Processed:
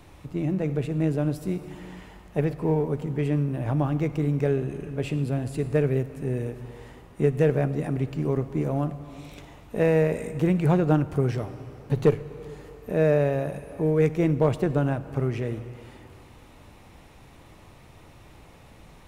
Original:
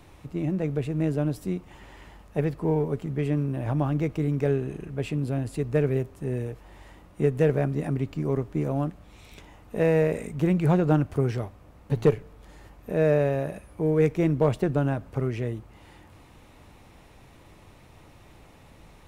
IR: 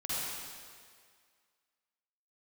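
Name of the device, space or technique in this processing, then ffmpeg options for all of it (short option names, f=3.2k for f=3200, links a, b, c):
compressed reverb return: -filter_complex "[0:a]asplit=2[a][b];[1:a]atrim=start_sample=2205[c];[b][c]afir=irnorm=-1:irlink=0,acompressor=threshold=-22dB:ratio=6,volume=-12dB[d];[a][d]amix=inputs=2:normalize=0"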